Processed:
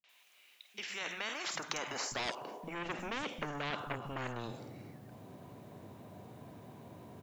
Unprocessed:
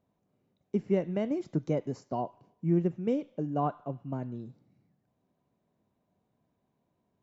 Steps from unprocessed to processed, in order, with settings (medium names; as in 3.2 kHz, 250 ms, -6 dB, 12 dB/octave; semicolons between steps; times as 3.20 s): in parallel at +1 dB: compressor with a negative ratio -34 dBFS, ratio -0.5; on the sum: high-pass sweep 2.6 kHz -> 110 Hz, 0.81–3.96 s; saturation -23.5 dBFS, distortion -11 dB; three bands offset in time lows, mids, highs 40/90 ms, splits 180/5900 Hz; spectrum-flattening compressor 4:1; trim +2 dB